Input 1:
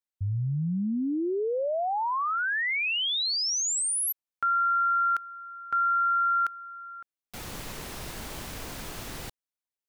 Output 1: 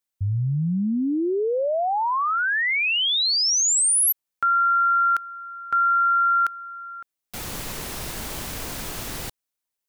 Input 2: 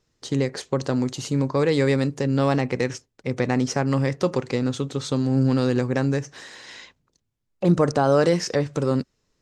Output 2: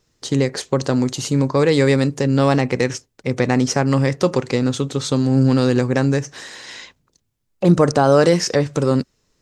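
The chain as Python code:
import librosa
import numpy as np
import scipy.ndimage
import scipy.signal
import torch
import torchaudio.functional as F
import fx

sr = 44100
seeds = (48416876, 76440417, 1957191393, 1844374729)

y = fx.high_shelf(x, sr, hz=6200.0, db=5.0)
y = F.gain(torch.from_numpy(y), 5.0).numpy()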